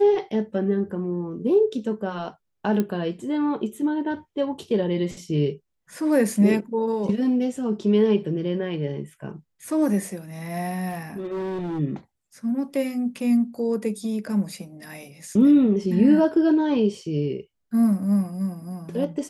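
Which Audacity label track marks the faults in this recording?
2.800000	2.800000	pop -12 dBFS
10.890000	11.800000	clipped -26 dBFS

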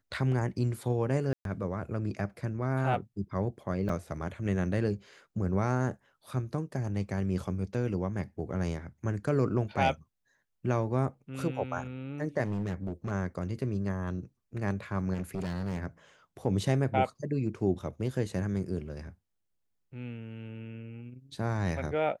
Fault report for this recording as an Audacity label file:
1.330000	1.450000	gap 0.122 s
3.890000	3.890000	gap 4 ms
12.440000	13.120000	clipped -29 dBFS
15.130000	15.790000	clipped -29.5 dBFS

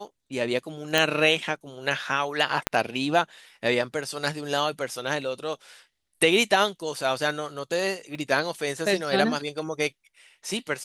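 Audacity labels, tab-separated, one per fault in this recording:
0.980000	0.980000	pop
2.670000	2.670000	pop -6 dBFS
8.150000	8.150000	gap 2.5 ms

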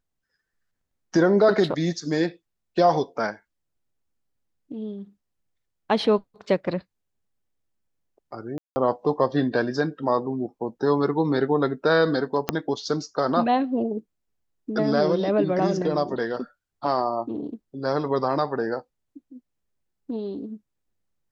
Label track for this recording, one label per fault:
8.580000	8.760000	gap 0.18 s
12.490000	12.490000	pop -6 dBFS

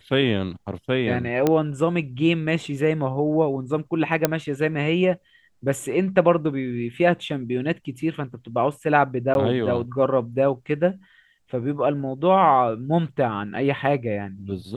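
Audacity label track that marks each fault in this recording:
1.470000	1.470000	pop -7 dBFS
4.250000	4.250000	pop -3 dBFS
9.340000	9.350000	gap 11 ms

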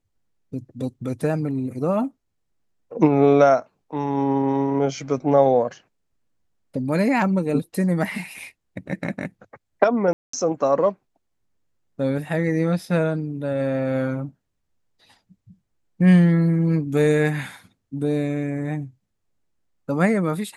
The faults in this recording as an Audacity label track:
10.130000	10.330000	gap 0.204 s

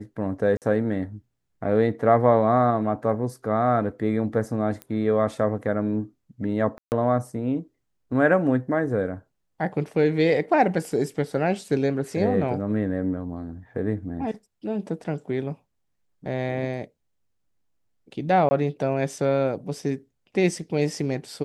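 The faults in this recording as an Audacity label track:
0.570000	0.620000	gap 48 ms
4.820000	4.820000	pop -20 dBFS
6.780000	6.920000	gap 0.139 s
18.490000	18.510000	gap 20 ms

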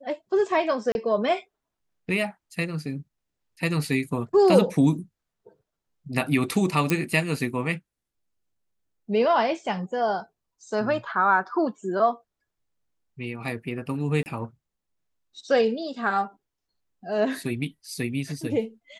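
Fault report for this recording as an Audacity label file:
0.920000	0.950000	gap 31 ms
6.900000	6.900000	pop -10 dBFS
14.230000	14.260000	gap 29 ms

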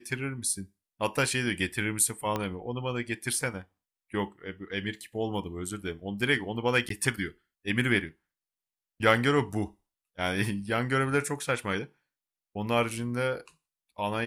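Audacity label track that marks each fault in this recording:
2.360000	2.360000	pop -16 dBFS
6.890000	6.900000	gap 13 ms

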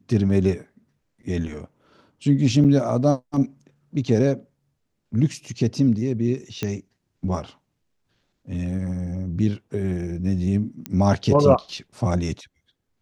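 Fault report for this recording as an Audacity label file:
2.640000	2.650000	gap 7.6 ms
6.630000	6.630000	pop -12 dBFS
10.860000	10.860000	pop -13 dBFS

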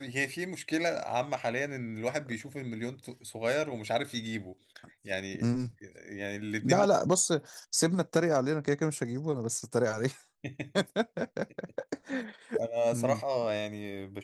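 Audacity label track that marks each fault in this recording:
7.540000	7.540000	pop

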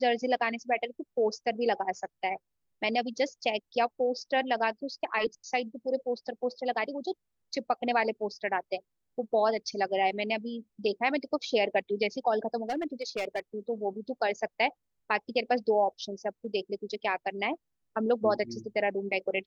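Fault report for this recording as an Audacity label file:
12.630000	13.400000	clipped -27 dBFS

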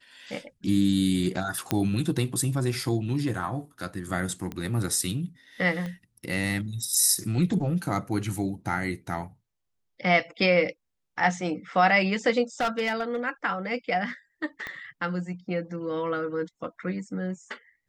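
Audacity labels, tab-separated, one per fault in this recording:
1.710000	1.710000	pop -9 dBFS
4.520000	4.520000	pop -21 dBFS
5.860000	5.860000	pop -23 dBFS
12.600000	13.160000	clipped -21.5 dBFS
14.670000	14.670000	pop -20 dBFS

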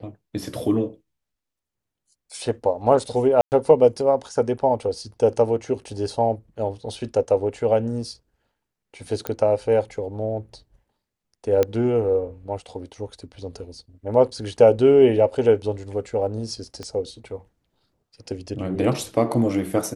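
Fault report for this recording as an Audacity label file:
3.410000	3.520000	gap 0.109 s
9.270000	9.270000	pop -10 dBFS
11.630000	11.630000	pop -8 dBFS
16.830000	16.830000	pop -21 dBFS

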